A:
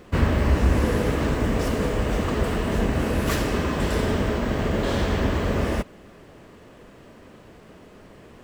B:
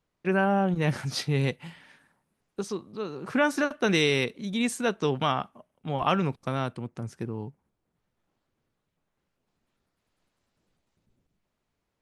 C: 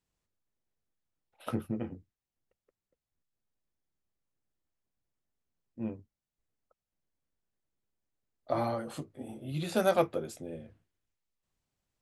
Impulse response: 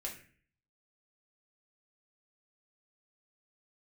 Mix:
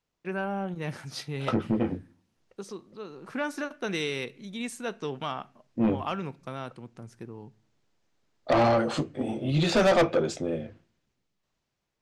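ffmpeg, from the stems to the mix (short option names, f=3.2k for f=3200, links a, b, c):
-filter_complex "[1:a]volume=-7.5dB,asplit=2[a][b];[b]volume=-13.5dB[c];[2:a]lowpass=f=6.6k:w=0.5412,lowpass=f=6.6k:w=1.3066,dynaudnorm=f=490:g=7:m=15dB,volume=1.5dB,asplit=2[d][e];[e]volume=-15.5dB[f];[3:a]atrim=start_sample=2205[g];[c][f]amix=inputs=2:normalize=0[h];[h][g]afir=irnorm=-1:irlink=0[i];[a][d][i]amix=inputs=3:normalize=0,lowshelf=f=120:g=-6.5,asoftclip=type=tanh:threshold=-17dB"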